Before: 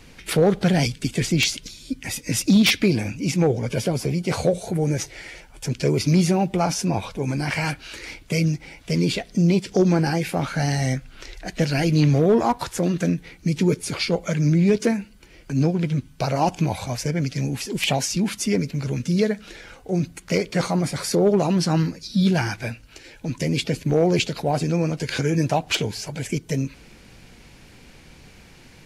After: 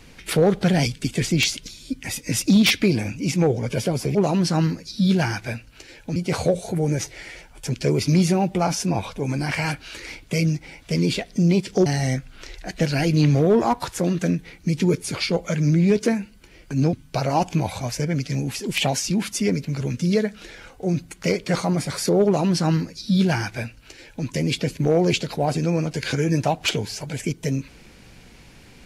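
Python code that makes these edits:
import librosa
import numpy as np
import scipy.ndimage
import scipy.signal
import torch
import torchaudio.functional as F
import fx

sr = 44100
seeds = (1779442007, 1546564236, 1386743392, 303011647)

y = fx.edit(x, sr, fx.cut(start_s=9.85, length_s=0.8),
    fx.cut(start_s=15.72, length_s=0.27),
    fx.duplicate(start_s=21.31, length_s=2.01, to_s=4.15), tone=tone)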